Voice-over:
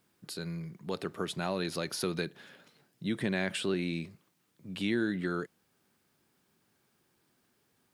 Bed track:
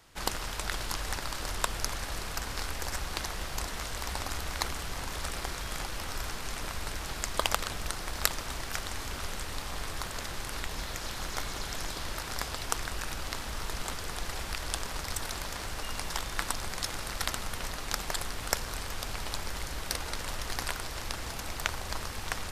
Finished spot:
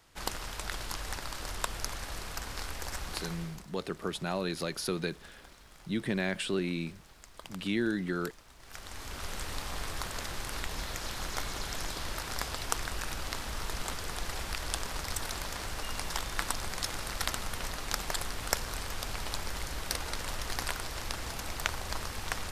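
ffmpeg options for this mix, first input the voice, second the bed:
ffmpeg -i stem1.wav -i stem2.wav -filter_complex "[0:a]adelay=2850,volume=0dB[link_01];[1:a]volume=15.5dB,afade=type=out:start_time=3.14:duration=0.51:silence=0.158489,afade=type=in:start_time=8.58:duration=0.87:silence=0.112202[link_02];[link_01][link_02]amix=inputs=2:normalize=0" out.wav

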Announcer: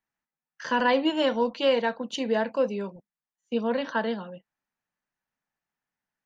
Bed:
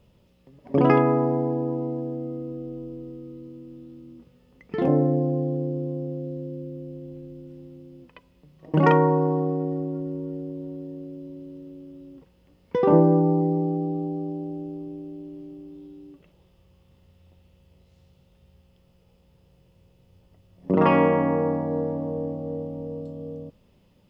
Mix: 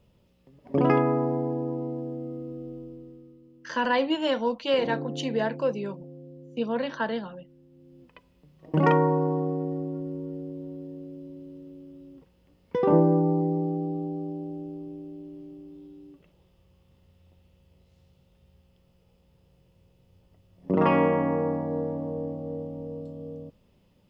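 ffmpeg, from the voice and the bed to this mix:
ffmpeg -i stem1.wav -i stem2.wav -filter_complex "[0:a]adelay=3050,volume=-1.5dB[link_01];[1:a]volume=6.5dB,afade=type=out:start_time=2.69:duration=0.7:silence=0.334965,afade=type=in:start_time=7.69:duration=0.47:silence=0.316228[link_02];[link_01][link_02]amix=inputs=2:normalize=0" out.wav

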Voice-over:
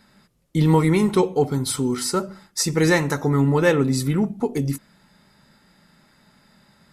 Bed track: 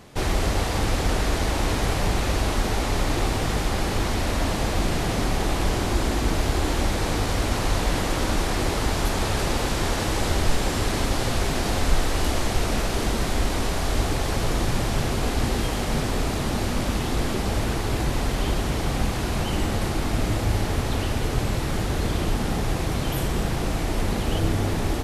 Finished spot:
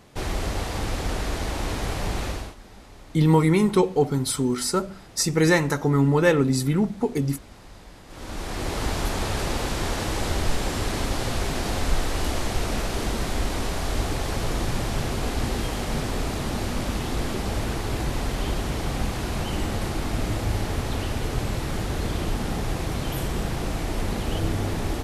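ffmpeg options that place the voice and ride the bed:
ffmpeg -i stem1.wav -i stem2.wav -filter_complex "[0:a]adelay=2600,volume=-1dB[link_01];[1:a]volume=16dB,afade=type=out:start_time=2.25:duration=0.3:silence=0.11885,afade=type=in:start_time=8.07:duration=0.78:silence=0.0944061[link_02];[link_01][link_02]amix=inputs=2:normalize=0" out.wav

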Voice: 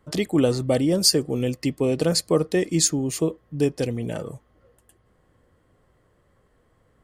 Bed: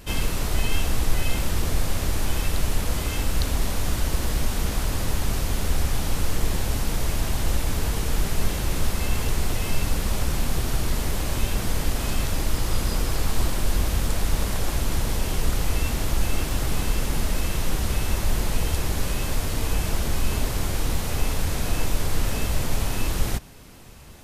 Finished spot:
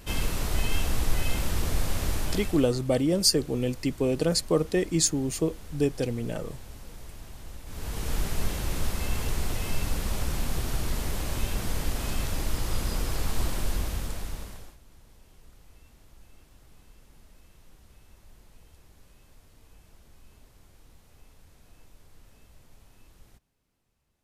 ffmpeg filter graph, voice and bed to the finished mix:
ffmpeg -i stem1.wav -i stem2.wav -filter_complex "[0:a]adelay=2200,volume=-3.5dB[link_01];[1:a]volume=11dB,afade=type=out:start_time=2.12:duration=0.61:silence=0.158489,afade=type=in:start_time=7.65:duration=0.47:silence=0.188365,afade=type=out:start_time=13.59:duration=1.18:silence=0.0501187[link_02];[link_01][link_02]amix=inputs=2:normalize=0" out.wav

